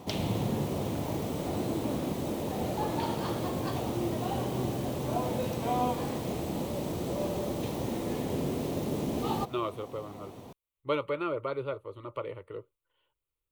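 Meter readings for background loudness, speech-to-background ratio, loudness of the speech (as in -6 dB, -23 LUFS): -32.5 LUFS, -3.5 dB, -36.0 LUFS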